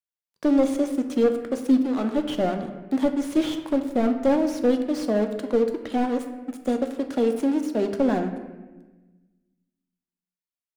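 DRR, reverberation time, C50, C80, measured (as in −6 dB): 5.5 dB, 1.2 s, 8.5 dB, 10.5 dB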